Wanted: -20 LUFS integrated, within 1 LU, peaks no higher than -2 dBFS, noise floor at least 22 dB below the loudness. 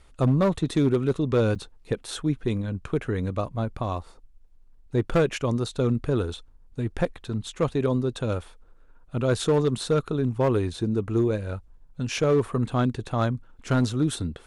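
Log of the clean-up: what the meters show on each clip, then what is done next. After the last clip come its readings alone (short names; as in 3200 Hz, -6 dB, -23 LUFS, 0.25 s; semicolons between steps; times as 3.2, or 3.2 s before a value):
clipped 1.0%; flat tops at -15.0 dBFS; dropouts 1; longest dropout 6.4 ms; loudness -26.0 LUFS; peak -15.0 dBFS; loudness target -20.0 LUFS
-> clip repair -15 dBFS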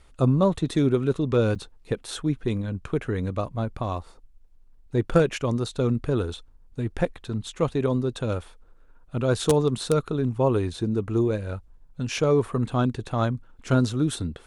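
clipped 0.0%; dropouts 1; longest dropout 6.4 ms
-> interpolate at 1.55, 6.4 ms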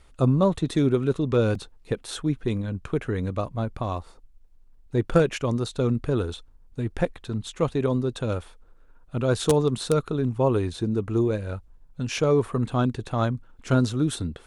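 dropouts 0; loudness -25.5 LUFS; peak -6.0 dBFS; loudness target -20.0 LUFS
-> gain +5.5 dB; limiter -2 dBFS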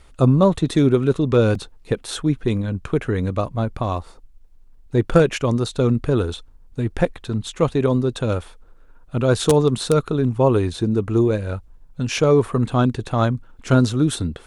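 loudness -20.0 LUFS; peak -2.0 dBFS; noise floor -48 dBFS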